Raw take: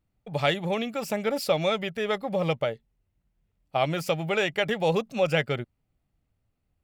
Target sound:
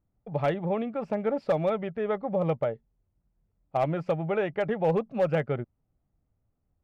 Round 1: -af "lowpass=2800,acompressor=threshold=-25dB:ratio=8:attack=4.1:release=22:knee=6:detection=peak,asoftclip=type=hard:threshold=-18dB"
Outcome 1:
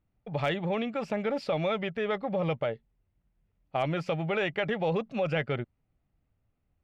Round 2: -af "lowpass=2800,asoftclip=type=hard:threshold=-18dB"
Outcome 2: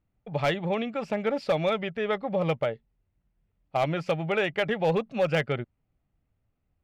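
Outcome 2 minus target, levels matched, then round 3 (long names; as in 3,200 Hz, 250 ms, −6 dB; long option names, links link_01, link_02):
2,000 Hz band +6.5 dB
-af "lowpass=1200,asoftclip=type=hard:threshold=-18dB"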